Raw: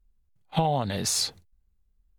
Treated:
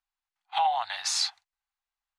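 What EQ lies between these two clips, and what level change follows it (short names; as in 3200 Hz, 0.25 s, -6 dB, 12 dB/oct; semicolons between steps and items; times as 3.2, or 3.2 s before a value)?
elliptic high-pass 770 Hz, stop band 40 dB; air absorption 84 m; +4.5 dB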